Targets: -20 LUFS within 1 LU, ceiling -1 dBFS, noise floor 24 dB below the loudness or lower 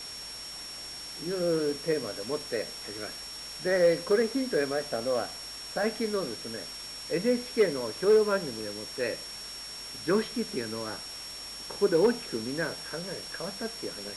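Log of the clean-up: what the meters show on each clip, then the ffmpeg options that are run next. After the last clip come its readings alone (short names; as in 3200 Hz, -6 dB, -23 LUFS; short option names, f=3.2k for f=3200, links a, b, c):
steady tone 5500 Hz; tone level -40 dBFS; noise floor -41 dBFS; noise floor target -55 dBFS; loudness -30.5 LUFS; peak -14.0 dBFS; loudness target -20.0 LUFS
-> -af "bandreject=f=5.5k:w=30"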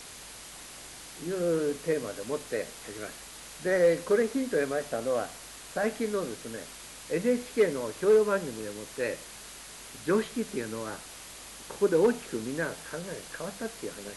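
steady tone none; noise floor -46 dBFS; noise floor target -54 dBFS
-> -af "afftdn=nr=8:nf=-46"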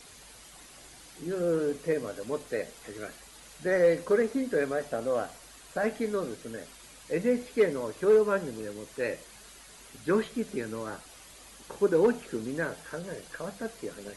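noise floor -51 dBFS; noise floor target -54 dBFS
-> -af "afftdn=nr=6:nf=-51"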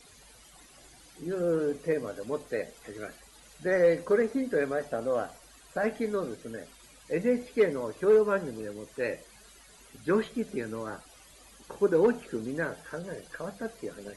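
noise floor -55 dBFS; loudness -30.0 LUFS; peak -14.5 dBFS; loudness target -20.0 LUFS
-> -af "volume=10dB"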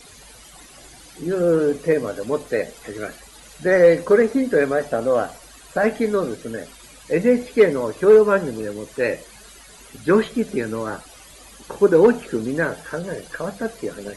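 loudness -20.0 LUFS; peak -4.5 dBFS; noise floor -45 dBFS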